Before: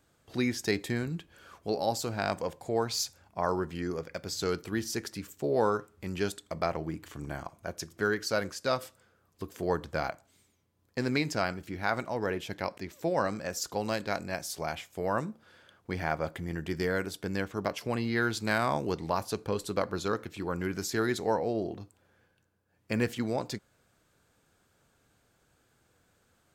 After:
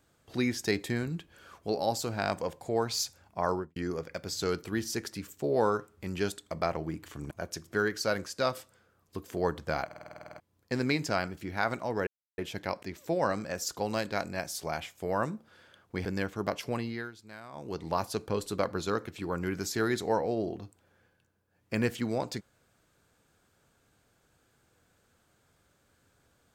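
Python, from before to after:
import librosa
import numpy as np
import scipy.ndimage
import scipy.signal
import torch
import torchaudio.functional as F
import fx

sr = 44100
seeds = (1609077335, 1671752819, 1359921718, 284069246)

y = fx.studio_fade_out(x, sr, start_s=3.5, length_s=0.26)
y = fx.edit(y, sr, fx.cut(start_s=7.31, length_s=0.26),
    fx.stutter_over(start_s=10.11, slice_s=0.05, count=11),
    fx.insert_silence(at_s=12.33, length_s=0.31),
    fx.cut(start_s=16.0, length_s=1.23),
    fx.fade_down_up(start_s=17.86, length_s=1.28, db=-19.0, fade_s=0.44), tone=tone)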